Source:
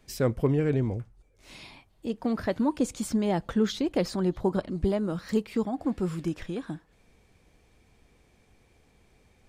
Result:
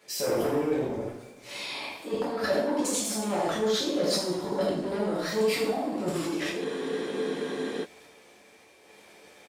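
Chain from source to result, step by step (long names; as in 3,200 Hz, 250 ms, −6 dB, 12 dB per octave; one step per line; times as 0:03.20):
dynamic equaliser 1,900 Hz, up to −5 dB, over −47 dBFS, Q 0.82
on a send: single-tap delay 78 ms −4.5 dB
on the sum: sample-and-hold tremolo
in parallel at +3 dB: downward compressor, threshold −42 dBFS, peak gain reduction 20 dB
on the sum: soft clipping −25.5 dBFS, distortion −10 dB
high-pass filter 360 Hz 12 dB per octave
transient designer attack −2 dB, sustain +12 dB
coupled-rooms reverb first 0.59 s, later 2.2 s, DRR −6.5 dB
frozen spectrum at 0:06.67, 1.16 s
level −1.5 dB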